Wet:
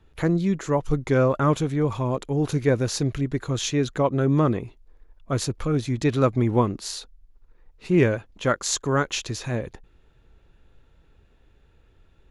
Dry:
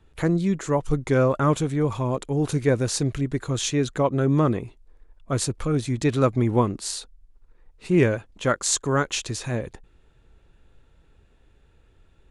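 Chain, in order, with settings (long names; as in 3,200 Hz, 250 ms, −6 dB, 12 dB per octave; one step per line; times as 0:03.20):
parametric band 8,500 Hz −11.5 dB 0.29 octaves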